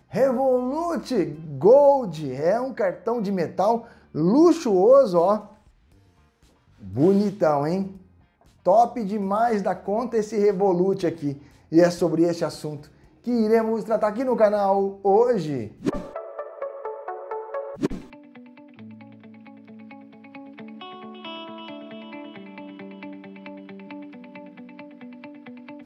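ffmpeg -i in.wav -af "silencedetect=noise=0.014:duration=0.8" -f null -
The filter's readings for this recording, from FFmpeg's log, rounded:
silence_start: 5.46
silence_end: 6.82 | silence_duration: 1.36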